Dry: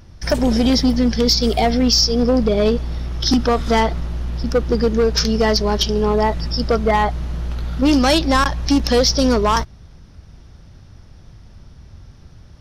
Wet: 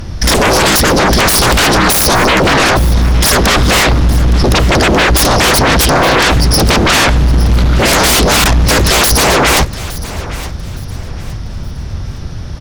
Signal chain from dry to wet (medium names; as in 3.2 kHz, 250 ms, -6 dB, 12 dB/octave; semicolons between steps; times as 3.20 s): sine folder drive 17 dB, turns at -5 dBFS; feedback delay 865 ms, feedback 30%, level -16 dB; trim -1 dB